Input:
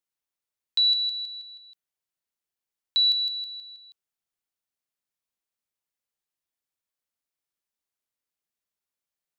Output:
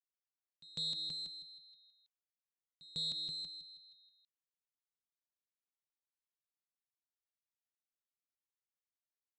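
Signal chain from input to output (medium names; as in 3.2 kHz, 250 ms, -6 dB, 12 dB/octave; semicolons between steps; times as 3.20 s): single-diode clipper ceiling -24 dBFS; pre-echo 150 ms -18 dB; ring modulator 160 Hz; on a send: delay 329 ms -6.5 dB; on the sum: Chebyshev shaper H 2 -39 dB, 3 -13 dB, 7 -42 dB, 8 -41 dB, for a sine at -16 dBFS; resampled via 16 kHz; peak limiter -27 dBFS, peak gain reduction 9.5 dB; trim -2 dB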